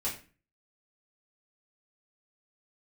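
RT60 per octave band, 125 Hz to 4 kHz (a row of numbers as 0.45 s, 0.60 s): 0.55 s, 0.50 s, 0.40 s, 0.35 s, 0.35 s, 0.30 s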